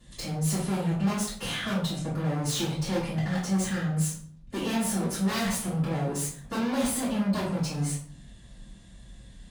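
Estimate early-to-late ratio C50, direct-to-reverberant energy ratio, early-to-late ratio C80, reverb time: 3.5 dB, −10.5 dB, 8.5 dB, 0.50 s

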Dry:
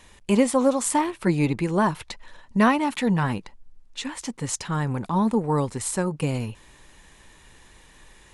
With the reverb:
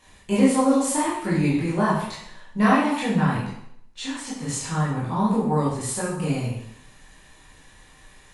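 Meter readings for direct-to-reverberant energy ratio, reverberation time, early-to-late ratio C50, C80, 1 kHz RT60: −8.5 dB, 0.70 s, 2.0 dB, 5.0 dB, 0.70 s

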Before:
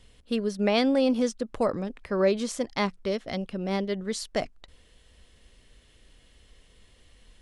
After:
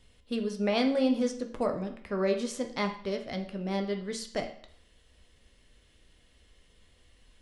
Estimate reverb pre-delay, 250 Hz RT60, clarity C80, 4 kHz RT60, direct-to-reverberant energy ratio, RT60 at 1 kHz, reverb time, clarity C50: 11 ms, 0.55 s, 13.5 dB, 0.50 s, 4.5 dB, 0.55 s, 0.55 s, 10.0 dB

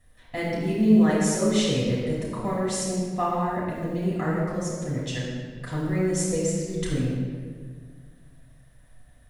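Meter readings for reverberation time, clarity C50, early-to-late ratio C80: 1.7 s, −1.0 dB, 1.5 dB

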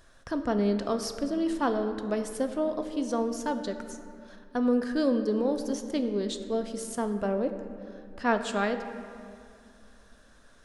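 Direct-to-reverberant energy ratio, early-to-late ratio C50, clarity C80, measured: 6.5 dB, 8.5 dB, 9.5 dB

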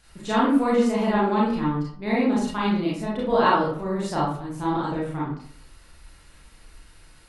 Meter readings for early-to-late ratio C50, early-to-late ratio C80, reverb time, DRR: 1.5 dB, 6.5 dB, 0.55 s, −7.0 dB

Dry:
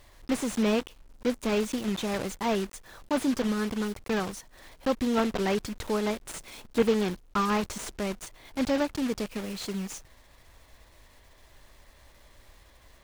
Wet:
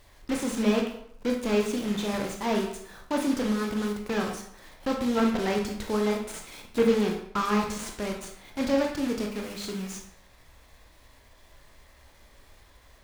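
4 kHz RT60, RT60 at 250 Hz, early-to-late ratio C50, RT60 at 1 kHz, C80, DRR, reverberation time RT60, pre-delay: 0.50 s, 0.65 s, 5.5 dB, 0.70 s, 9.0 dB, 1.5 dB, 0.70 s, 20 ms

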